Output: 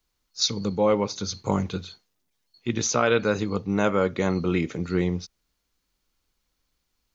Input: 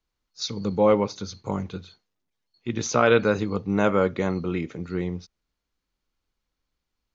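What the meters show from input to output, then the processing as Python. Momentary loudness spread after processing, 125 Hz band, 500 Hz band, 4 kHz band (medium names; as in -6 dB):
12 LU, +1.0 dB, -1.5 dB, +5.0 dB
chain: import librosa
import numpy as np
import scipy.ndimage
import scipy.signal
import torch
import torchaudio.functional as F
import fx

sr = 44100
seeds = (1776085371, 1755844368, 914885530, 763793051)

y = fx.rider(x, sr, range_db=4, speed_s=0.5)
y = fx.high_shelf(y, sr, hz=4600.0, db=8.5)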